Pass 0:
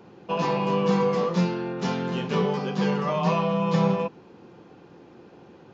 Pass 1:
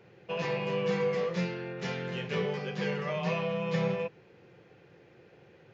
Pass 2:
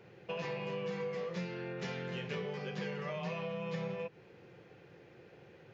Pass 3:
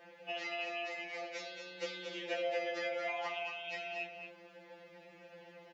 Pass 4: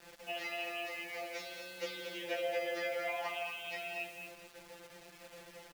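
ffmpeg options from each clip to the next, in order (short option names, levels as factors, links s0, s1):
-af "equalizer=f=125:t=o:w=1:g=7,equalizer=f=250:t=o:w=1:g=-10,equalizer=f=500:t=o:w=1:g=6,equalizer=f=1000:t=o:w=1:g=-8,equalizer=f=2000:t=o:w=1:g=11,volume=0.398"
-af "acompressor=threshold=0.0141:ratio=4"
-af "aecho=1:1:227:0.447,afreqshift=97,afftfilt=real='re*2.83*eq(mod(b,8),0)':imag='im*2.83*eq(mod(b,8),0)':win_size=2048:overlap=0.75,volume=1.78"
-af "acrusher=bits=8:mix=0:aa=0.000001,aecho=1:1:165:0.266"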